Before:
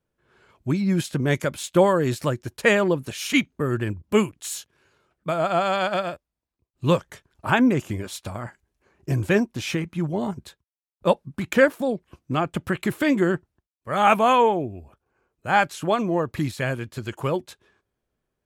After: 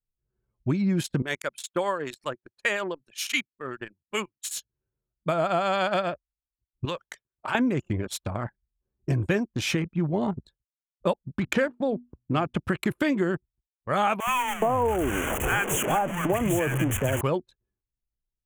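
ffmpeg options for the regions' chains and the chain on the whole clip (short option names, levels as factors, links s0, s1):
-filter_complex "[0:a]asettb=1/sr,asplit=3[s0][s1][s2];[s0]atrim=end=1.224[s3];[s1]atrim=start=1.22:end=4.57,asetpts=PTS-STARTPTS,afade=t=in:d=0.004:c=qsin,afade=t=out:st=3.346:d=0.004:c=qsin,highpass=f=1100:p=1,acrossover=split=1600[s4][s5];[s4]aeval=exprs='val(0)*(1-0.5/2+0.5/2*cos(2*PI*7.3*n/s))':c=same[s6];[s5]aeval=exprs='val(0)*(1-0.5/2-0.5/2*cos(2*PI*7.3*n/s))':c=same[s7];[s6][s7]amix=inputs=2:normalize=0[s8];[s2]atrim=start=4.566[s9];[s3][s8]acrossfade=d=0.004:c1=hsin:c2=qsin[s10];[s10][s9]acrossfade=d=0.004:c1=qsin:c2=hsin,asettb=1/sr,asplit=3[s11][s12][s13];[s11]atrim=end=6.854[s14];[s12]atrim=start=6.85:end=7.55,asetpts=PTS-STARTPTS,afade=t=in:d=0.004:c=qsin,afade=t=out:st=0.696:d=0.004:c=qsin,highpass=f=570:p=1,acompressor=threshold=0.0224:ratio=3:attack=3.2:release=140:knee=1:detection=peak,equalizer=f=4500:w=0.36:g=6[s15];[s13]atrim=start=7.546[s16];[s14][s15]acrossfade=d=0.004:c1=hsin:c2=qsin[s17];[s17][s16]acrossfade=d=0.004:c1=qsin:c2=hsin,asettb=1/sr,asplit=3[s18][s19][s20];[s18]atrim=end=11.404[s21];[s19]atrim=start=11.4:end=12.61,asetpts=PTS-STARTPTS,afade=t=in:d=0.004:c=qsin,afade=t=out:st=1.206:d=0.004:c=qsin,equalizer=f=11000:t=o:w=0.49:g=4.5,bandreject=f=121.6:t=h:w=4,bandreject=f=243.2:t=h:w=4,adynamicsmooth=sensitivity=4:basefreq=7000[s22];[s20]atrim=start=12.606[s23];[s21][s22]acrossfade=d=0.004:c1=hsin:c2=qsin[s24];[s24][s23]acrossfade=d=0.004:c1=qsin:c2=hsin,asettb=1/sr,asplit=3[s25][s26][s27];[s25]atrim=end=14.204[s28];[s26]atrim=start=14.2:end=17.21,asetpts=PTS-STARTPTS,afade=t=in:d=0.004:c=qsin,afade=t=out:st=3.006:d=0.004:c=qsin,aeval=exprs='val(0)+0.5*0.0891*sgn(val(0))':c=same,asuperstop=centerf=4500:order=8:qfactor=1.4,acrossover=split=160|1100[s29][s30][s31];[s29]adelay=70[s32];[s30]adelay=420[s33];[s32][s33][s31]amix=inputs=3:normalize=0,atrim=end_sample=132741[s34];[s27]atrim=start=17.206[s35];[s28][s34]acrossfade=d=0.004:c1=hsin:c2=qsin[s36];[s36][s35]acrossfade=d=0.004:c1=qsin:c2=hsin,anlmdn=3.98,acompressor=threshold=0.0708:ratio=6,volume=1.26"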